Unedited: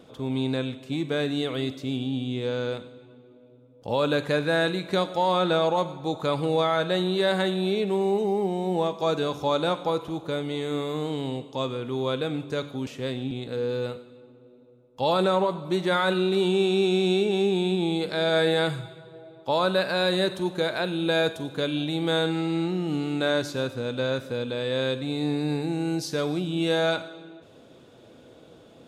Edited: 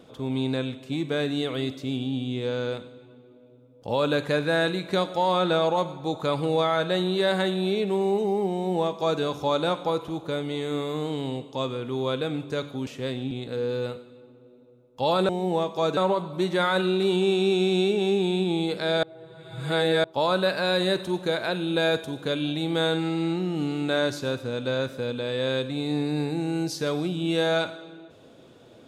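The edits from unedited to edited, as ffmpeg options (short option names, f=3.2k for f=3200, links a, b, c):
-filter_complex "[0:a]asplit=5[a][b][c][d][e];[a]atrim=end=15.292[f];[b]atrim=start=8.528:end=9.212[g];[c]atrim=start=15.288:end=18.352[h];[d]atrim=start=18.348:end=19.362,asetpts=PTS-STARTPTS,areverse[i];[e]atrim=start=19.358[j];[f][g]acrossfade=d=0.004:c1=hsin:c2=hsin[k];[k][h]acrossfade=d=0.004:c1=hsin:c2=hsin[l];[l][i]acrossfade=d=0.004:c1=hsin:c2=hsin[m];[m][j]acrossfade=d=0.004:c1=hsin:c2=hsin"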